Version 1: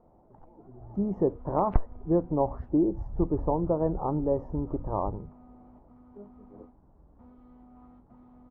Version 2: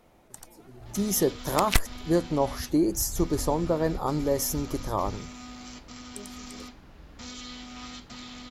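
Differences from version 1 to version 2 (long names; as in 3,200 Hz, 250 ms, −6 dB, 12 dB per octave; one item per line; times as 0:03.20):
first sound +8.5 dB
master: remove Chebyshev low-pass filter 920 Hz, order 3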